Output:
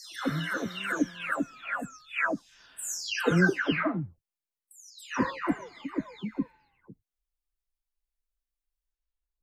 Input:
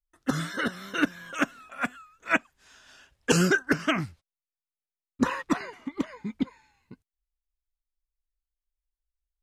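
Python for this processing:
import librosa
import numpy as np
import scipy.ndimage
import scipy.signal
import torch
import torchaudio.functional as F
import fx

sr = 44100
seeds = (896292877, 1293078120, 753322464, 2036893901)

y = fx.spec_delay(x, sr, highs='early', ms=515)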